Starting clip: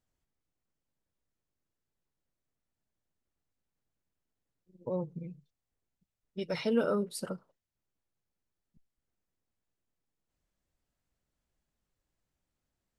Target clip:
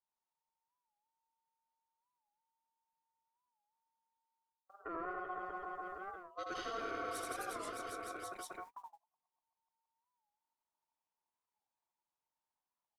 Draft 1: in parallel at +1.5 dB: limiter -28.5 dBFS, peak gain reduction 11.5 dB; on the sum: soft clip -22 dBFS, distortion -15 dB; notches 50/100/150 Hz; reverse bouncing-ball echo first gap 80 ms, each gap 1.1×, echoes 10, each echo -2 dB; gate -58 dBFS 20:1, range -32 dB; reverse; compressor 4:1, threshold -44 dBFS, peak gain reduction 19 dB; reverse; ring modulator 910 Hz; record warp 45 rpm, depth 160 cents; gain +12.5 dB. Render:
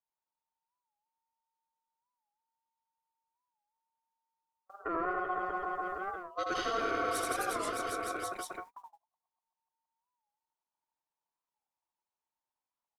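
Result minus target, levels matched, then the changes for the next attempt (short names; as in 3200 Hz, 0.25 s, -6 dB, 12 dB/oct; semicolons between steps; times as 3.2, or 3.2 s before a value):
compressor: peak gain reduction -8.5 dB
change: compressor 4:1, threshold -55.5 dBFS, peak gain reduction 27.5 dB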